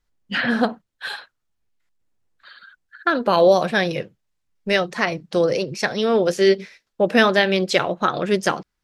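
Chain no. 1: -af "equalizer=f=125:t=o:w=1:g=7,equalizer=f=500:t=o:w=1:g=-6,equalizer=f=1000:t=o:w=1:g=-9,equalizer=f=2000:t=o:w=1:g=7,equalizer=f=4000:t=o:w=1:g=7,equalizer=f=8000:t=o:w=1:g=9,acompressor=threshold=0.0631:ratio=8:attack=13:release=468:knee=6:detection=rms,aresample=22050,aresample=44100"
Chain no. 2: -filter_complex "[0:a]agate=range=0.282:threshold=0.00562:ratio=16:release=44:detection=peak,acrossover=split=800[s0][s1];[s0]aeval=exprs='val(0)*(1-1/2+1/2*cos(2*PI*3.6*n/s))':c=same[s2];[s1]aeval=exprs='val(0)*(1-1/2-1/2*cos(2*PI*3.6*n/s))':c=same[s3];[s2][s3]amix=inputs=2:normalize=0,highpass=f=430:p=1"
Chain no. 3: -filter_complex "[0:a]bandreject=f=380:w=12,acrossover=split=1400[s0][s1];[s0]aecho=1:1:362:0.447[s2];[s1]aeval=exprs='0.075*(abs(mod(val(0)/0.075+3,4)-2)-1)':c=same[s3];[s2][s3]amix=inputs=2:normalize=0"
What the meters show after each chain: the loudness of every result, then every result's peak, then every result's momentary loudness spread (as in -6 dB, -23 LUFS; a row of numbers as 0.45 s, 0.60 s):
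-30.0 LUFS, -27.5 LUFS, -21.0 LUFS; -11.0 dBFS, -5.0 dBFS, -4.5 dBFS; 12 LU, 14 LU, 12 LU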